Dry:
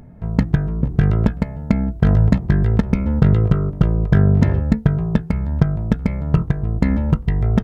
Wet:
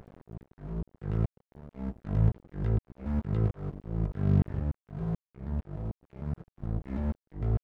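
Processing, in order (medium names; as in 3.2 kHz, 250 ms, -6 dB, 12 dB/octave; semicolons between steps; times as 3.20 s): dynamic bell 180 Hz, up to +3 dB, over -27 dBFS, Q 1.2; slow attack 791 ms; crossover distortion -39.5 dBFS; trim +2 dB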